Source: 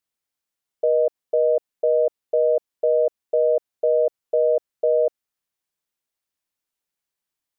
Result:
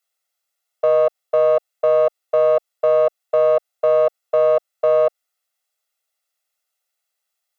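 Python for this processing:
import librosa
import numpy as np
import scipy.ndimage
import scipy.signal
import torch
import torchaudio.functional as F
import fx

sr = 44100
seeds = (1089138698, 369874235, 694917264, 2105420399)

y = fx.diode_clip(x, sr, knee_db=-21.0)
y = scipy.signal.sosfilt(scipy.signal.butter(2, 490.0, 'highpass', fs=sr, output='sos'), y)
y = y + 0.75 * np.pad(y, (int(1.5 * sr / 1000.0), 0))[:len(y)]
y = F.gain(torch.from_numpy(y), 5.0).numpy()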